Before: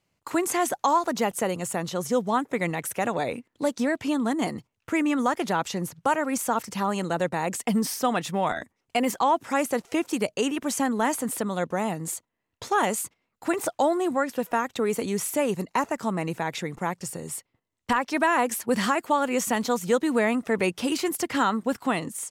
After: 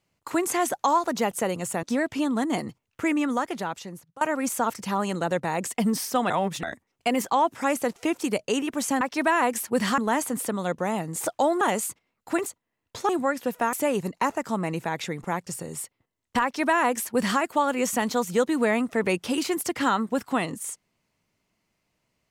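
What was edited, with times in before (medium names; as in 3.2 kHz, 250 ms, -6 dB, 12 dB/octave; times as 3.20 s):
1.83–3.72 s: delete
5.01–6.10 s: fade out, to -22.5 dB
8.19–8.52 s: reverse
12.13–12.76 s: swap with 13.61–14.01 s
14.65–15.27 s: delete
17.97–18.94 s: copy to 10.90 s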